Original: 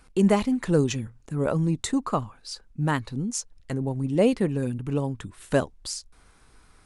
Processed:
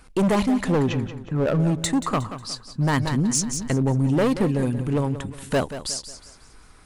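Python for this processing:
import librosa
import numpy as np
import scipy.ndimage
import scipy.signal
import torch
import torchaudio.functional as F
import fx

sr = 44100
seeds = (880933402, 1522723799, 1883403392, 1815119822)

y = fx.lowpass(x, sr, hz=2600.0, slope=12, at=(0.72, 1.6))
y = np.clip(10.0 ** (22.0 / 20.0) * y, -1.0, 1.0) / 10.0 ** (22.0 / 20.0)
y = fx.echo_feedback(y, sr, ms=181, feedback_pct=39, wet_db=-12.0)
y = fx.env_flatten(y, sr, amount_pct=50, at=(2.93, 4.22))
y = F.gain(torch.from_numpy(y), 5.0).numpy()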